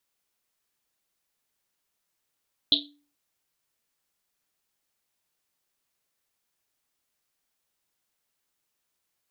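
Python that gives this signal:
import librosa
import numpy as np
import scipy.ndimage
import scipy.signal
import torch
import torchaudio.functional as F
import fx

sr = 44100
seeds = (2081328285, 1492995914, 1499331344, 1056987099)

y = fx.risset_drum(sr, seeds[0], length_s=0.43, hz=290.0, decay_s=0.45, noise_hz=3700.0, noise_width_hz=1000.0, noise_pct=75)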